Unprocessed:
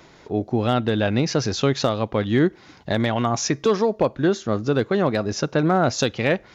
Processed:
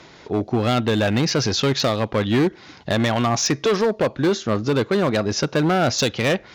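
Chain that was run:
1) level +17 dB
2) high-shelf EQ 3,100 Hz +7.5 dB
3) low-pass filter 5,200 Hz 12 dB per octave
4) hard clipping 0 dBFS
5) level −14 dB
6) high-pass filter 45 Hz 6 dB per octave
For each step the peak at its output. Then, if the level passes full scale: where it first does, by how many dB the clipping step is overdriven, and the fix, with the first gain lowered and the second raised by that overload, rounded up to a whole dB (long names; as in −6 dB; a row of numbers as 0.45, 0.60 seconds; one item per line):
+8.5, +11.0, +10.0, 0.0, −14.0, −11.0 dBFS
step 1, 10.0 dB
step 1 +7 dB, step 5 −4 dB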